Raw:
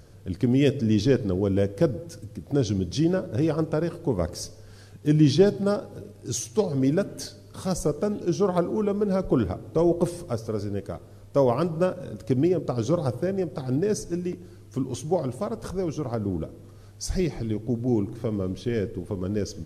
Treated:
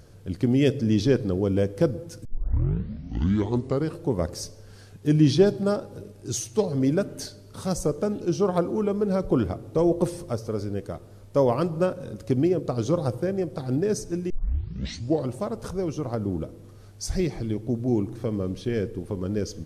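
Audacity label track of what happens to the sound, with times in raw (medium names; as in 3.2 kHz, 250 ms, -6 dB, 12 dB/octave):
2.250000	2.250000	tape start 1.72 s
14.300000	14.300000	tape start 0.97 s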